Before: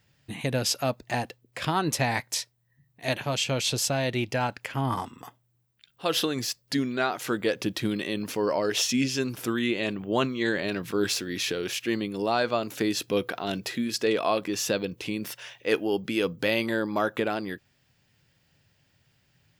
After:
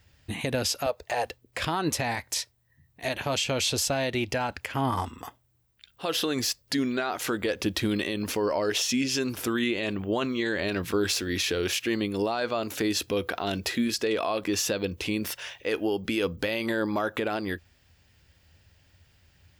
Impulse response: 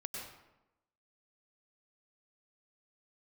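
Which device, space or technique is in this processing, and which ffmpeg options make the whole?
car stereo with a boomy subwoofer: -filter_complex "[0:a]asettb=1/sr,asplit=3[s0][s1][s2];[s0]atrim=end=0.864[s3];[s1]atrim=start=0.86:end=1.26,asetpts=PTS-STARTPTS,afade=t=in:d=0.004:c=qsin,afade=t=out:st=0.396:d=0.004:c=qsin,lowshelf=f=360:t=q:w=3:g=-9[s4];[s2]atrim=start=1.256[s5];[s3][s4]acrossfade=d=0.004:c1=hsin:c2=qsin[s6];[s6][s5]acrossfade=d=0.004:c1=qsin:c2=hsin,lowshelf=f=100:t=q:w=3:g=7,alimiter=limit=0.0891:level=0:latency=1:release=106,volume=1.58"

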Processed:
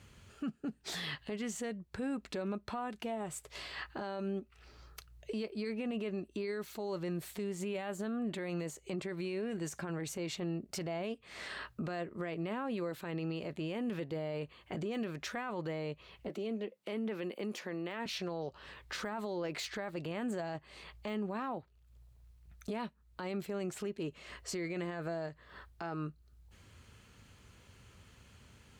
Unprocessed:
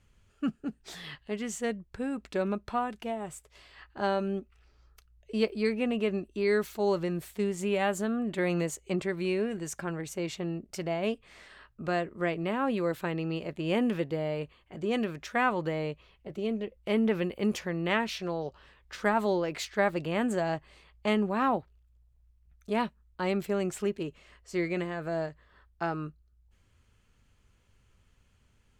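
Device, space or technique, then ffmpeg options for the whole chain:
broadcast voice chain: -filter_complex "[0:a]highpass=76,deesser=0.9,acompressor=threshold=0.00398:ratio=3,equalizer=f=4200:t=o:w=0.3:g=3,alimiter=level_in=6.31:limit=0.0631:level=0:latency=1:release=10,volume=0.158,asettb=1/sr,asplit=3[s0][s1][s2];[s0]atrim=end=16.294[s3];[s1]atrim=start=16.29:end=18.06,asetpts=PTS-STARTPTS,afade=t=in:d=0.004:c=qsin,afade=t=out:st=1.766:d=0.004:c=qsin,highpass=f=200:w=0.5412,highpass=f=200:w=1.3066[s4];[s2]atrim=start=18.056[s5];[s3][s4]acrossfade=d=0.004:c1=hsin:c2=qsin[s6];[s6][s5]acrossfade=d=0.004:c1=qsin:c2=hsin,volume=3.16"

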